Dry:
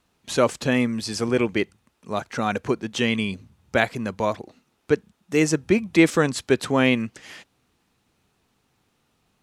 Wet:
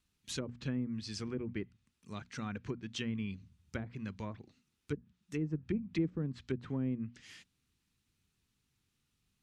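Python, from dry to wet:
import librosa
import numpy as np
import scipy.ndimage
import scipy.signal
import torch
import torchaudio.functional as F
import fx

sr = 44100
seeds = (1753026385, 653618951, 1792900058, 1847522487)

y = fx.env_lowpass_down(x, sr, base_hz=510.0, full_db=-15.5)
y = fx.tone_stack(y, sr, knobs='6-0-2')
y = fx.hum_notches(y, sr, base_hz=60, count=4)
y = y * 10.0 ** (6.0 / 20.0)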